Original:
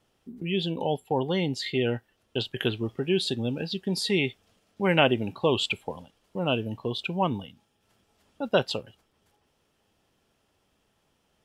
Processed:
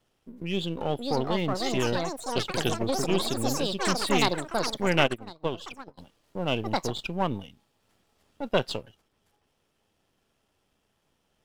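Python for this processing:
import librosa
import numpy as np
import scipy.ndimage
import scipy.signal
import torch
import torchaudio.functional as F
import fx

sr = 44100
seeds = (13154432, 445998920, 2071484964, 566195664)

y = np.where(x < 0.0, 10.0 ** (-7.0 / 20.0) * x, x)
y = fx.echo_pitch(y, sr, ms=697, semitones=6, count=3, db_per_echo=-3.0)
y = fx.upward_expand(y, sr, threshold_db=-37.0, expansion=2.5, at=(5.05, 5.97), fade=0.02)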